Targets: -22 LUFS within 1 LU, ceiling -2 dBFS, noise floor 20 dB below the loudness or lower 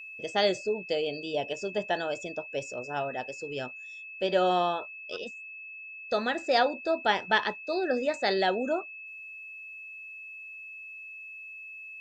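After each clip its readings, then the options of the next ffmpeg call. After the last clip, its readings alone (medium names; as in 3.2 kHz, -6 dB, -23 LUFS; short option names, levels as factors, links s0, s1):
steady tone 2.6 kHz; tone level -41 dBFS; loudness -29.5 LUFS; peak level -9.5 dBFS; loudness target -22.0 LUFS
-> -af "bandreject=f=2600:w=30"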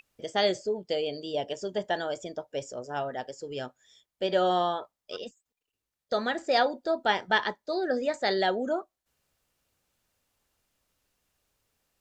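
steady tone not found; loudness -29.5 LUFS; peak level -10.0 dBFS; loudness target -22.0 LUFS
-> -af "volume=2.37"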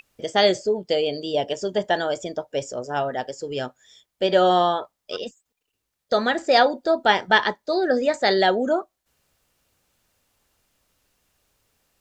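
loudness -22.0 LUFS; peak level -2.5 dBFS; noise floor -80 dBFS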